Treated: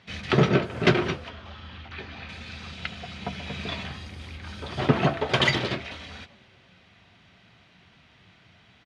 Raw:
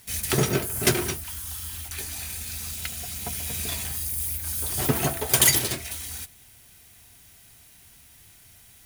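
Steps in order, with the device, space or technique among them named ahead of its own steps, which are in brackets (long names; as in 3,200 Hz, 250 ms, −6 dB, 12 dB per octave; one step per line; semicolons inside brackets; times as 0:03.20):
0:01.29–0:02.29: high-frequency loss of the air 160 metres
frequency-shifting delay pedal into a guitar cabinet (echo with shifted repeats 196 ms, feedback 51%, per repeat +150 Hz, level −23 dB; loudspeaker in its box 100–3,700 Hz, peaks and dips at 180 Hz +7 dB, 570 Hz +4 dB, 1,200 Hz +4 dB)
level +2.5 dB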